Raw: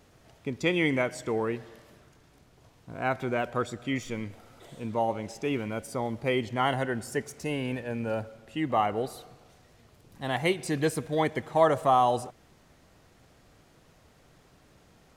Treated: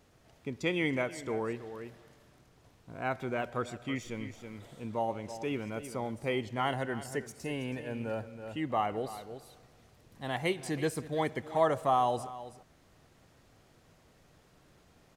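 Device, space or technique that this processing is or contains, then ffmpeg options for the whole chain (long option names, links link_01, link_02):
ducked delay: -filter_complex "[0:a]asplit=3[link_01][link_02][link_03];[link_02]adelay=324,volume=-3.5dB[link_04];[link_03]apad=whole_len=683156[link_05];[link_04][link_05]sidechaincompress=threshold=-37dB:ratio=10:attack=37:release=642[link_06];[link_01][link_06]amix=inputs=2:normalize=0,volume=-5dB"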